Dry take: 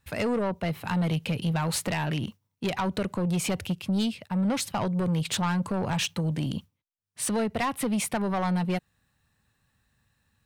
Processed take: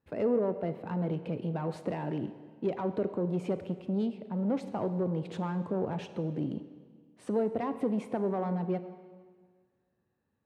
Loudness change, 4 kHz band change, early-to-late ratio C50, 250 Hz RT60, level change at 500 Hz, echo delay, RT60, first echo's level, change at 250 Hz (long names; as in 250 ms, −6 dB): −4.5 dB, −20.5 dB, 11.5 dB, 1.7 s, +0.5 dB, no echo audible, 1.7 s, no echo audible, −4.5 dB